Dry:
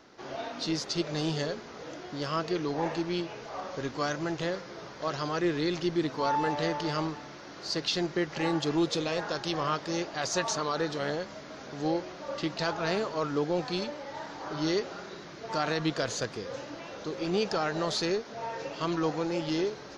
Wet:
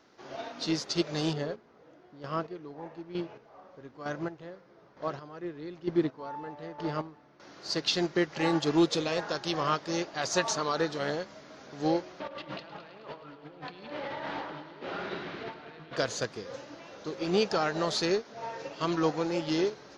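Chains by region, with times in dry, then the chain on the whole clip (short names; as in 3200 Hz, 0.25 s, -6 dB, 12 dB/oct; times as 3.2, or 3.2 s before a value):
1.33–7.4 LPF 1300 Hz 6 dB/oct + chopper 1.1 Hz, depth 60%, duty 25%
12.2–15.97 resonant high shelf 4600 Hz -14 dB, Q 1.5 + negative-ratio compressor -41 dBFS + multi-head echo 0.106 s, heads first and second, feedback 64%, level -13 dB
whole clip: low shelf 65 Hz -6.5 dB; upward expander 1.5:1, over -42 dBFS; gain +4 dB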